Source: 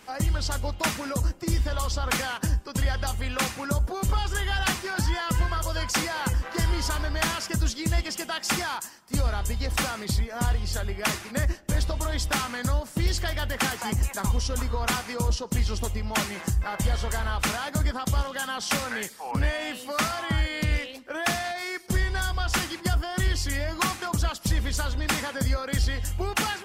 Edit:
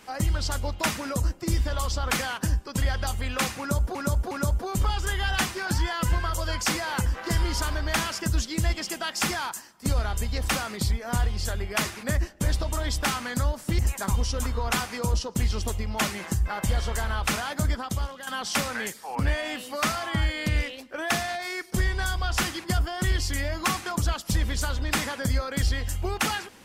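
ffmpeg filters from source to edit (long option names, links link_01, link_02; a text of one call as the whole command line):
ffmpeg -i in.wav -filter_complex "[0:a]asplit=5[link_01][link_02][link_03][link_04][link_05];[link_01]atrim=end=3.952[link_06];[link_02]atrim=start=3.588:end=3.952[link_07];[link_03]atrim=start=3.588:end=13.072[link_08];[link_04]atrim=start=13.948:end=18.43,asetpts=PTS-STARTPTS,afade=type=out:start_time=3.882:duration=0.6:silence=0.316228[link_09];[link_05]atrim=start=18.43,asetpts=PTS-STARTPTS,afade=type=in:duration=0.004:curve=hsin:silence=0.316228[link_10];[link_06][link_07]acrossfade=duration=0.004:curve1=hsin:curve2=hsin[link_11];[link_11][link_08]acrossfade=duration=0.004:curve1=hsin:curve2=hsin[link_12];[link_09][link_10]concat=n=2:v=0:a=1[link_13];[link_12][link_13]acrossfade=duration=0.004:curve1=hsin:curve2=hsin" out.wav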